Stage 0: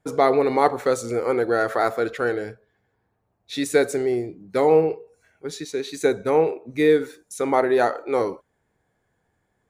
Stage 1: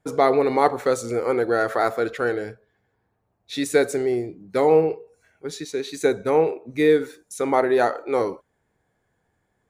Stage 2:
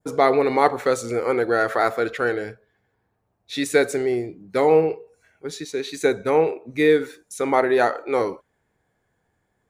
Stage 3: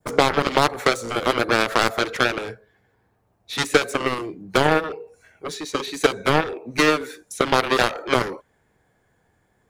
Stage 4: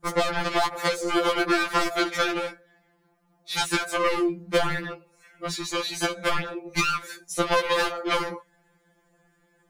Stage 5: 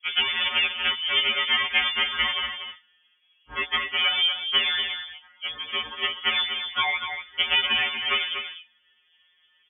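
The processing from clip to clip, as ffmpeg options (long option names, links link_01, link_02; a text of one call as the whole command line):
ffmpeg -i in.wav -af anull out.wav
ffmpeg -i in.wav -af "adynamicequalizer=threshold=0.0126:dfrequency=2300:dqfactor=0.79:tfrequency=2300:tqfactor=0.79:attack=5:release=100:ratio=0.375:range=2:mode=boostabove:tftype=bell" out.wav
ffmpeg -i in.wav -filter_complex "[0:a]acrossover=split=260|3400[link_01][link_02][link_03];[link_01]acompressor=threshold=-42dB:ratio=4[link_04];[link_02]acompressor=threshold=-24dB:ratio=4[link_05];[link_03]acompressor=threshold=-40dB:ratio=4[link_06];[link_04][link_05][link_06]amix=inputs=3:normalize=0,aeval=exprs='0.266*(cos(1*acos(clip(val(0)/0.266,-1,1)))-cos(1*PI/2))+0.0668*(cos(7*acos(clip(val(0)/0.266,-1,1)))-cos(7*PI/2))':channel_layout=same,volume=8.5dB" out.wav
ffmpeg -i in.wav -af "acompressor=threshold=-18dB:ratio=6,afftfilt=real='re*2.83*eq(mod(b,8),0)':imag='im*2.83*eq(mod(b,8),0)':win_size=2048:overlap=0.75,volume=3.5dB" out.wav
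ffmpeg -i in.wav -af "lowpass=frequency=3000:width_type=q:width=0.5098,lowpass=frequency=3000:width_type=q:width=0.6013,lowpass=frequency=3000:width_type=q:width=0.9,lowpass=frequency=3000:width_type=q:width=2.563,afreqshift=-3500,aecho=1:1:241:0.398" out.wav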